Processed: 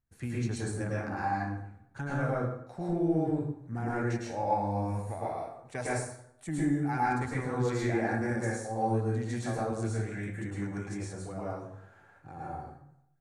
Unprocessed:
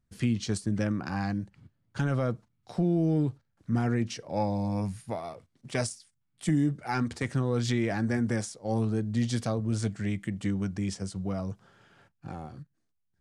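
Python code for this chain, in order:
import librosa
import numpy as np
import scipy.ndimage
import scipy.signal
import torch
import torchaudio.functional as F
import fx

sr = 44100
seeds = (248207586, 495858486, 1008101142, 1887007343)

y = fx.graphic_eq_31(x, sr, hz=(200, 800, 1600, 3150, 5000), db=(-10, 6, 4, -11, -10))
y = fx.rev_plate(y, sr, seeds[0], rt60_s=0.73, hf_ratio=0.65, predelay_ms=95, drr_db=-6.5)
y = y * librosa.db_to_amplitude(-8.0)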